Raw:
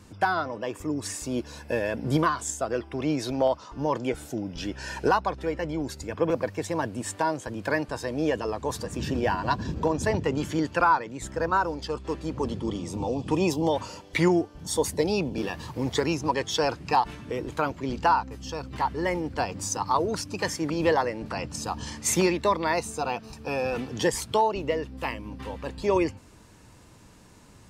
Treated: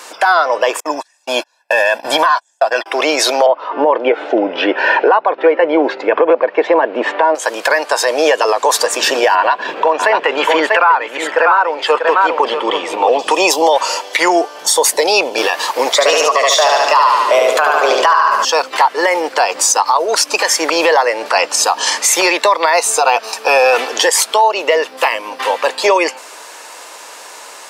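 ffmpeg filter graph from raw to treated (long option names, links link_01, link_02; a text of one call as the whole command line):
ffmpeg -i in.wav -filter_complex "[0:a]asettb=1/sr,asplit=3[link_01][link_02][link_03];[link_01]atrim=end=0.804[link_04];[link_02]atrim=start=0.8:end=2.86,asetpts=PTS-STARTPTS,afade=type=in:duration=0.004:curve=qsin,afade=type=out:start_time=2.056:duration=0.004:curve=qsin,acrossover=split=4600[link_05][link_06];[link_06]acompressor=threshold=-49dB:ratio=4:attack=1:release=60[link_07];[link_05][link_07]amix=inputs=2:normalize=0,agate=range=-40dB:threshold=-34dB:ratio=16:release=100:detection=peak,aecho=1:1:1.2:0.68,atrim=end_sample=90846[link_08];[link_03]atrim=start=2.856[link_09];[link_04][link_08]acrossfade=duration=0.004:curve1=hsin:curve2=qsin[link_10];[link_10][link_09]acrossfade=duration=0.004:curve1=qsin:curve2=hsin,asettb=1/sr,asplit=3[link_11][link_12][link_13];[link_11]atrim=end=3.464[link_14];[link_12]atrim=start=3.46:end=7.35,asetpts=PTS-STARTPTS,afade=type=in:duration=0.004:curve=qsin,afade=type=out:start_time=3.886:duration=0.004:curve=qsin,lowpass=frequency=2900:width=0.5412,lowpass=frequency=2900:width=1.3066,equalizer=frequency=290:width_type=o:width=2.2:gain=11.5[link_15];[link_13]atrim=start=7.346[link_16];[link_14][link_15]acrossfade=duration=0.004:curve1=hsin:curve2=qsin[link_17];[link_17][link_16]acrossfade=duration=0.004:curve1=qsin:curve2=hsin,asettb=1/sr,asplit=3[link_18][link_19][link_20];[link_18]atrim=end=9.354[link_21];[link_19]atrim=start=9.35:end=13.19,asetpts=PTS-STARTPTS,afade=type=in:duration=0.004:curve=qsin,afade=type=out:start_time=3.836:duration=0.004:curve=qsin,highshelf=frequency=4000:width_type=q:width=1.5:gain=-13,aecho=1:1:641:0.335,atrim=end_sample=169344[link_22];[link_20]atrim=start=13.186[link_23];[link_21][link_22]acrossfade=duration=0.004:curve1=hsin:curve2=qsin[link_24];[link_24][link_23]acrossfade=duration=0.004:curve1=qsin:curve2=hsin,asettb=1/sr,asplit=3[link_25][link_26][link_27];[link_25]atrim=end=15.934[link_28];[link_26]atrim=start=15.93:end=18.45,asetpts=PTS-STARTPTS,afade=type=in:duration=0.004:curve=qsin,afade=type=out:start_time=2.516:duration=0.004:curve=qsin,afreqshift=140,aecho=1:1:73|146|219|292|365|438|511:0.708|0.361|0.184|0.0939|0.0479|0.0244|0.0125,atrim=end_sample=111132[link_29];[link_27]atrim=start=18.446[link_30];[link_28][link_29]acrossfade=duration=0.004:curve1=hsin:curve2=qsin[link_31];[link_31][link_30]acrossfade=duration=0.004:curve1=qsin:curve2=hsin,highpass=frequency=540:width=0.5412,highpass=frequency=540:width=1.3066,acompressor=threshold=-30dB:ratio=5,alimiter=level_in=25.5dB:limit=-1dB:release=50:level=0:latency=1,volume=-1dB" out.wav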